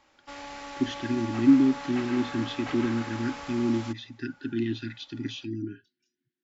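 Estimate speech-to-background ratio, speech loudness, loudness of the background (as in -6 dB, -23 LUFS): 11.0 dB, -28.0 LUFS, -39.0 LUFS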